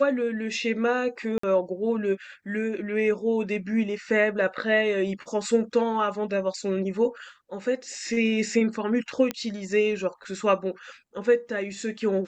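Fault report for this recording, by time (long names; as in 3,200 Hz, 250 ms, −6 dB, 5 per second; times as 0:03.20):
0:01.38–0:01.43: drop-out 54 ms
0:09.31: click −13 dBFS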